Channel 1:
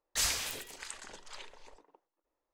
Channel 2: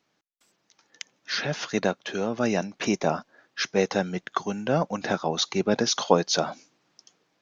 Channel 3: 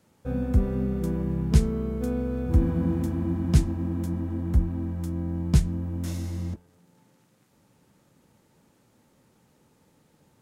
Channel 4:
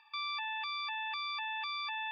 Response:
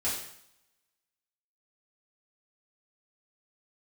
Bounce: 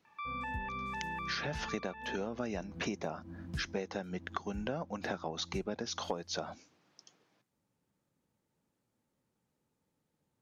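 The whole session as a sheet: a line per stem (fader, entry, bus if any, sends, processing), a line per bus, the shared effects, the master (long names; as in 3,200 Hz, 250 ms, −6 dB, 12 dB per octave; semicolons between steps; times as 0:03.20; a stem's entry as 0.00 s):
−20.0 dB, 0.70 s, no send, brickwall limiter −30.5 dBFS, peak gain reduction 11.5 dB; automatic ducking −17 dB, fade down 1.70 s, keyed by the second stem
−2.0 dB, 0.00 s, no send, high-shelf EQ 5,000 Hz −6 dB
−19.0 dB, 0.00 s, no send, no processing
+0.5 dB, 0.05 s, no send, low-pass filter 2,200 Hz 24 dB per octave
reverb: not used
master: downward compressor 12 to 1, threshold −33 dBFS, peak gain reduction 19 dB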